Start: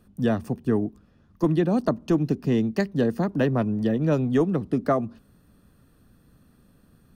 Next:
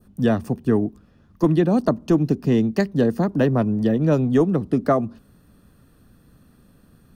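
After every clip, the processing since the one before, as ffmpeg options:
ffmpeg -i in.wav -af "adynamicequalizer=threshold=0.00631:dfrequency=2400:dqfactor=0.83:tfrequency=2400:tqfactor=0.83:attack=5:release=100:ratio=0.375:range=2:mode=cutabove:tftype=bell,volume=4dB" out.wav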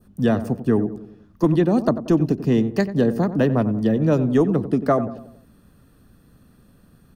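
ffmpeg -i in.wav -filter_complex "[0:a]asplit=2[link_01][link_02];[link_02]adelay=92,lowpass=frequency=1300:poles=1,volume=-12dB,asplit=2[link_03][link_04];[link_04]adelay=92,lowpass=frequency=1300:poles=1,volume=0.51,asplit=2[link_05][link_06];[link_06]adelay=92,lowpass=frequency=1300:poles=1,volume=0.51,asplit=2[link_07][link_08];[link_08]adelay=92,lowpass=frequency=1300:poles=1,volume=0.51,asplit=2[link_09][link_10];[link_10]adelay=92,lowpass=frequency=1300:poles=1,volume=0.51[link_11];[link_01][link_03][link_05][link_07][link_09][link_11]amix=inputs=6:normalize=0" out.wav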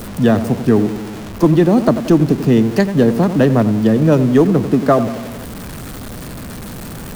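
ffmpeg -i in.wav -af "aeval=exprs='val(0)+0.5*0.0335*sgn(val(0))':channel_layout=same,volume=5.5dB" out.wav

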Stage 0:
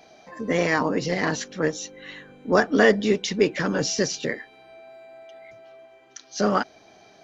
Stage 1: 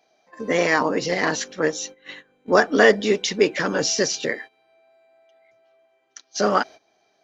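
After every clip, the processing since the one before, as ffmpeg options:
ffmpeg -i in.wav -af "bass=frequency=250:gain=-9,treble=frequency=4000:gain=1,agate=range=-16dB:threshold=-40dB:ratio=16:detection=peak,volume=3.5dB" out.wav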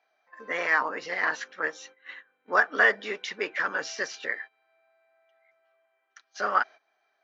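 ffmpeg -i in.wav -af "bandpass=frequency=1500:width_type=q:width=1.7:csg=0" out.wav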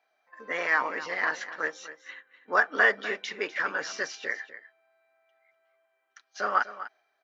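ffmpeg -i in.wav -af "aecho=1:1:248:0.2,volume=-1dB" out.wav

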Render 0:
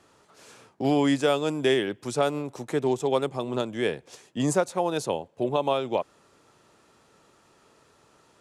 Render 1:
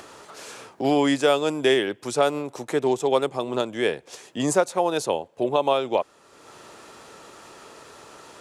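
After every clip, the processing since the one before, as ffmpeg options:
ffmpeg -i in.wav -filter_complex "[0:a]lowshelf=frequency=150:gain=4,asplit=2[link_01][link_02];[link_02]acompressor=mode=upward:threshold=-30dB:ratio=2.5,volume=1dB[link_03];[link_01][link_03]amix=inputs=2:normalize=0,bass=frequency=250:gain=-10,treble=frequency=4000:gain=0,volume=-2.5dB" out.wav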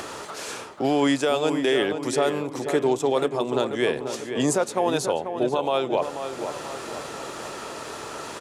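ffmpeg -i in.wav -filter_complex "[0:a]alimiter=limit=-14dB:level=0:latency=1:release=24,areverse,acompressor=mode=upward:threshold=-28dB:ratio=2.5,areverse,asplit=2[link_01][link_02];[link_02]adelay=488,lowpass=frequency=2500:poles=1,volume=-8dB,asplit=2[link_03][link_04];[link_04]adelay=488,lowpass=frequency=2500:poles=1,volume=0.53,asplit=2[link_05][link_06];[link_06]adelay=488,lowpass=frequency=2500:poles=1,volume=0.53,asplit=2[link_07][link_08];[link_08]adelay=488,lowpass=frequency=2500:poles=1,volume=0.53,asplit=2[link_09][link_10];[link_10]adelay=488,lowpass=frequency=2500:poles=1,volume=0.53,asplit=2[link_11][link_12];[link_12]adelay=488,lowpass=frequency=2500:poles=1,volume=0.53[link_13];[link_01][link_03][link_05][link_07][link_09][link_11][link_13]amix=inputs=7:normalize=0,volume=1.5dB" out.wav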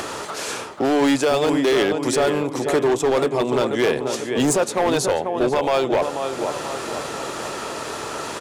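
ffmpeg -i in.wav -af "volume=20dB,asoftclip=hard,volume=-20dB,volume=6dB" out.wav

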